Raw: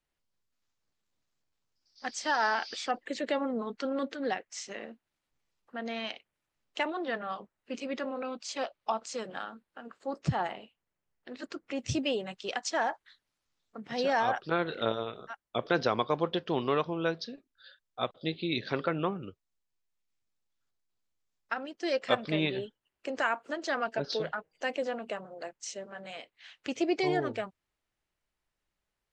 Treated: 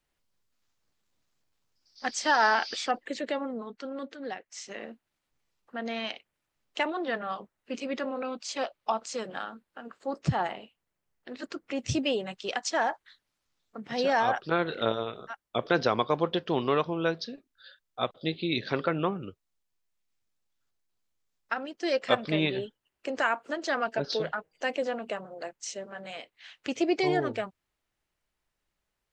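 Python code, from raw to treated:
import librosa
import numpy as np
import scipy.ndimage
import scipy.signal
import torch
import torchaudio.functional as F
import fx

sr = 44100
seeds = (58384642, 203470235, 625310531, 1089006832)

y = fx.gain(x, sr, db=fx.line((2.69, 5.0), (3.78, -5.0), (4.33, -5.0), (4.88, 2.5)))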